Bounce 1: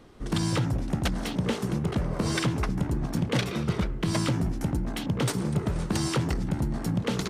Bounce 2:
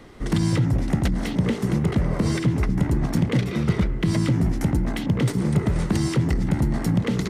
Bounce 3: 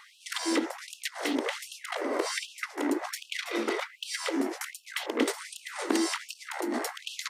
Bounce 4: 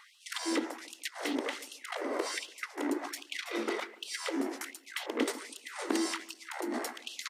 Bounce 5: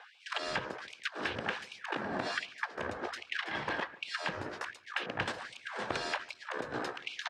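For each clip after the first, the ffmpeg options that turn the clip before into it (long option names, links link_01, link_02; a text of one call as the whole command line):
ffmpeg -i in.wav -filter_complex "[0:a]equalizer=frequency=2000:width=6.5:gain=8,acrossover=split=400[link_01][link_02];[link_02]acompressor=threshold=-37dB:ratio=10[link_03];[link_01][link_03]amix=inputs=2:normalize=0,volume=6.5dB" out.wav
ffmpeg -i in.wav -af "asoftclip=type=hard:threshold=-12dB,afftfilt=real='re*gte(b*sr/1024,220*pow(2600/220,0.5+0.5*sin(2*PI*1.3*pts/sr)))':imag='im*gte(b*sr/1024,220*pow(2600/220,0.5+0.5*sin(2*PI*1.3*pts/sr)))':win_size=1024:overlap=0.75,volume=1.5dB" out.wav
ffmpeg -i in.wav -filter_complex "[0:a]asplit=2[link_01][link_02];[link_02]adelay=144,lowpass=frequency=940:poles=1,volume=-15.5dB,asplit=2[link_03][link_04];[link_04]adelay=144,lowpass=frequency=940:poles=1,volume=0.34,asplit=2[link_05][link_06];[link_06]adelay=144,lowpass=frequency=940:poles=1,volume=0.34[link_07];[link_01][link_03][link_05][link_07]amix=inputs=4:normalize=0,volume=-4dB" out.wav
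ffmpeg -i in.wav -af "afreqshift=-370,highpass=290,lowpass=3300,volume=4dB" out.wav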